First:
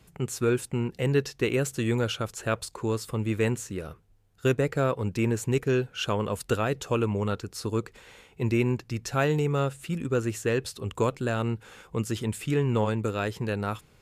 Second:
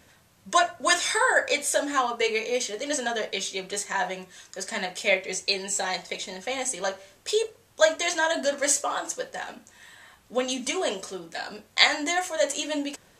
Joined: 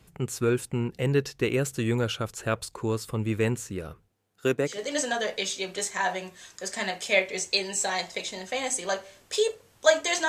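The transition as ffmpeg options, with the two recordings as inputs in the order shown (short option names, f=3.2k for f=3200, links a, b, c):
-filter_complex "[0:a]asettb=1/sr,asplit=3[a][b][c];[a]atrim=end=4.084[d];[b]atrim=start=4.08:end=4.79,asetpts=PTS-STARTPTS,afade=t=in:d=0.004:c=qsin,afade=t=out:st=0.706:d=0.004:c=qsin,highpass=200[e];[c]atrim=start=4.786[f];[d][e]acrossfade=d=0.004:c1=hsin:c2=qsin[g];[g][f]acrossfade=d=0.004:c1=qsin:c2=hsin,apad=whole_dur=10.28,atrim=end=10.28,atrim=end=4.79,asetpts=PTS-STARTPTS[h];[1:a]atrim=start=2.6:end=8.23,asetpts=PTS-STARTPTS[i];[h][i]acrossfade=d=0.14:c1=tri:c2=tri"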